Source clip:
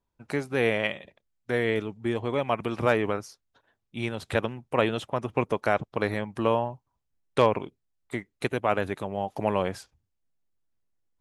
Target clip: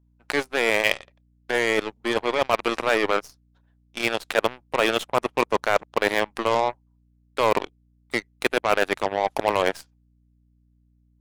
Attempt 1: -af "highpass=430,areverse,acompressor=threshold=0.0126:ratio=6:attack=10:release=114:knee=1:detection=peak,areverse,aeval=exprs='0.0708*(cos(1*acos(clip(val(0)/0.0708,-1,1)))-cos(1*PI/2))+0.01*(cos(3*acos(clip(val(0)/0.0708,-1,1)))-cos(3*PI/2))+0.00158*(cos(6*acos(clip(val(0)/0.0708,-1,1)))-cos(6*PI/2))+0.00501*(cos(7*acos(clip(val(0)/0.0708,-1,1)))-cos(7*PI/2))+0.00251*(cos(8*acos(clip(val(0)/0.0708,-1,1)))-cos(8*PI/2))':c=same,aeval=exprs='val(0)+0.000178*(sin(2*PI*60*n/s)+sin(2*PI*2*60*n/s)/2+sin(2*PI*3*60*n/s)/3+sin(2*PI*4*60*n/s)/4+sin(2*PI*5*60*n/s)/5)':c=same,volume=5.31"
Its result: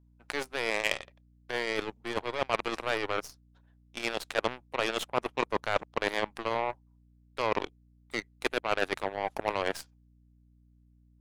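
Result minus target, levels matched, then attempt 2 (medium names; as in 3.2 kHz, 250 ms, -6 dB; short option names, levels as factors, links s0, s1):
compression: peak gain reduction +5.5 dB
-af "highpass=430,areverse,acompressor=threshold=0.0266:ratio=6:attack=10:release=114:knee=1:detection=peak,areverse,aeval=exprs='0.0708*(cos(1*acos(clip(val(0)/0.0708,-1,1)))-cos(1*PI/2))+0.01*(cos(3*acos(clip(val(0)/0.0708,-1,1)))-cos(3*PI/2))+0.00158*(cos(6*acos(clip(val(0)/0.0708,-1,1)))-cos(6*PI/2))+0.00501*(cos(7*acos(clip(val(0)/0.0708,-1,1)))-cos(7*PI/2))+0.00251*(cos(8*acos(clip(val(0)/0.0708,-1,1)))-cos(8*PI/2))':c=same,aeval=exprs='val(0)+0.000178*(sin(2*PI*60*n/s)+sin(2*PI*2*60*n/s)/2+sin(2*PI*3*60*n/s)/3+sin(2*PI*4*60*n/s)/4+sin(2*PI*5*60*n/s)/5)':c=same,volume=5.31"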